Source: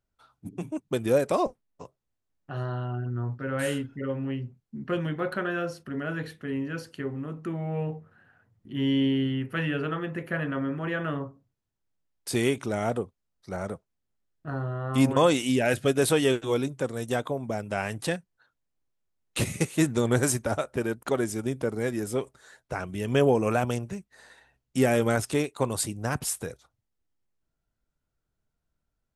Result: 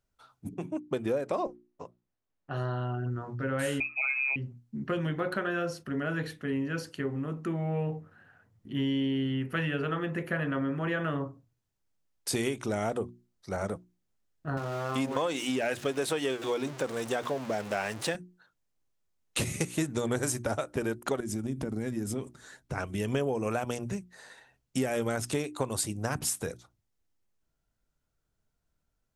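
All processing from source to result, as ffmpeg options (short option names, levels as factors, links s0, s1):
-filter_complex "[0:a]asettb=1/sr,asplit=3[s0][s1][s2];[s0]atrim=end=0.544[s3];[s1]atrim=start=0.54:end=2.51,asetpts=PTS-STARTPTS,afade=t=in:d=0.004:c=qsin,afade=t=out:st=1.966:d=0.004:c=qsin,lowpass=f=2100:p=1,lowshelf=f=160:g=-6.5[s4];[s2]atrim=start=2.506[s5];[s3][s4]acrossfade=d=0.004:c1=hsin:c2=qsin[s6];[s6][s5]acrossfade=d=0.004:c1=qsin:c2=hsin,asettb=1/sr,asplit=3[s7][s8][s9];[s7]atrim=end=3.804[s10];[s8]atrim=start=3.8:end=4.36,asetpts=PTS-STARTPTS,afade=t=in:d=0.004:c=qsin,afade=t=out:st=0.556:d=0.004:c=qsin,aecho=1:1:6.9:0.73,atrim=end_sample=24696,lowpass=f=2300:t=q:w=0.5098,lowpass=f=2300:t=q:w=0.6013,lowpass=f=2300:t=q:w=0.9,lowpass=f=2300:t=q:w=2.563,afreqshift=-2700[s11];[s9]atrim=start=4.356[s12];[s10][s11]acrossfade=d=0.004:c1=hsin:c2=qsin[s13];[s13][s12]acrossfade=d=0.004:c1=qsin:c2=hsin,asettb=1/sr,asplit=3[s14][s15][s16];[s14]atrim=end=14.574[s17];[s15]atrim=start=14.57:end=18.15,asetpts=PTS-STARTPTS,afade=t=in:d=0.004:c=qsin,afade=t=out:st=3.576:d=0.004:c=qsin,aeval=exprs='val(0)+0.5*0.02*sgn(val(0))':c=same,highpass=f=360:p=1,highshelf=f=6900:g=-9.5[s18];[s16]atrim=start=18.146[s19];[s17][s18]acrossfade=d=0.004:c1=hsin:c2=qsin[s20];[s20][s19]acrossfade=d=0.004:c1=qsin:c2=hsin,asettb=1/sr,asplit=3[s21][s22][s23];[s21]atrim=end=21.204[s24];[s22]atrim=start=21.2:end=22.78,asetpts=PTS-STARTPTS,afade=t=in:d=0.004:c=qsin,afade=t=out:st=1.576:d=0.004:c=qsin,lowshelf=f=360:t=q:w=1.5:g=7,acompressor=threshold=0.0316:ratio=5:attack=3.2:release=140:knee=1:detection=peak[s25];[s23]atrim=start=22.776[s26];[s24][s25]acrossfade=d=0.004:c1=hsin:c2=qsin[s27];[s27][s26]acrossfade=d=0.004:c1=qsin:c2=hsin,equalizer=f=6300:t=o:w=0.77:g=2.5,bandreject=f=60:t=h:w=6,bandreject=f=120:t=h:w=6,bandreject=f=180:t=h:w=6,bandreject=f=240:t=h:w=6,bandreject=f=300:t=h:w=6,bandreject=f=360:t=h:w=6,acompressor=threshold=0.0398:ratio=6,volume=1.19"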